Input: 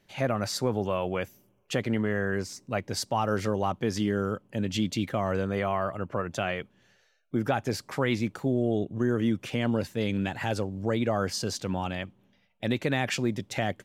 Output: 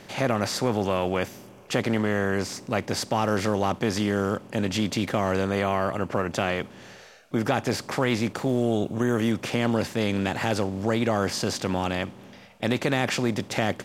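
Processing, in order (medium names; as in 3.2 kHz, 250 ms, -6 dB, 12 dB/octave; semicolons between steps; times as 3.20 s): spectral levelling over time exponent 0.6; 8.49–9.32 s: treble shelf 11 kHz +9.5 dB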